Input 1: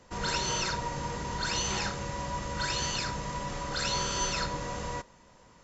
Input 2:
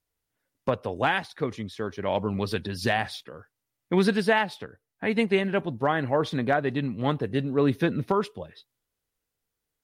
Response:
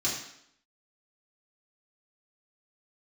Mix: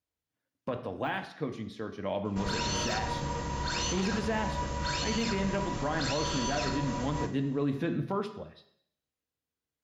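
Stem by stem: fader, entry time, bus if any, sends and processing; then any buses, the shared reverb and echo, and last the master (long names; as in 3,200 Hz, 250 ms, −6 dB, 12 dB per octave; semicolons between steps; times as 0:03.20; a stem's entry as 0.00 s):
−1.0 dB, 2.25 s, send −13 dB, no processing
−6.5 dB, 0.00 s, send −13.5 dB, high-pass filter 62 Hz; de-essing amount 85%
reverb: on, RT60 0.70 s, pre-delay 3 ms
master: high-shelf EQ 5,200 Hz −8 dB; brickwall limiter −21 dBFS, peak gain reduction 7.5 dB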